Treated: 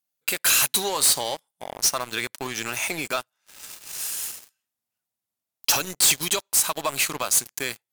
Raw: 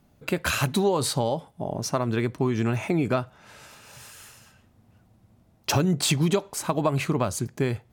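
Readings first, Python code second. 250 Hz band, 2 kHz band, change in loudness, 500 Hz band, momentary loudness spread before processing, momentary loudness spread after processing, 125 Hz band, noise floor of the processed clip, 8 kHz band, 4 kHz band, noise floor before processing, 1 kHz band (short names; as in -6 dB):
-12.5 dB, +4.5 dB, +3.5 dB, -6.5 dB, 11 LU, 14 LU, -17.5 dB, under -85 dBFS, +12.0 dB, +7.5 dB, -61 dBFS, -0.5 dB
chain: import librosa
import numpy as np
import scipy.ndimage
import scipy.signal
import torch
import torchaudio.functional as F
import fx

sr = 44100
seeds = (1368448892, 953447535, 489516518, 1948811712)

y = np.diff(x, prepend=0.0)
y = fx.leveller(y, sr, passes=5)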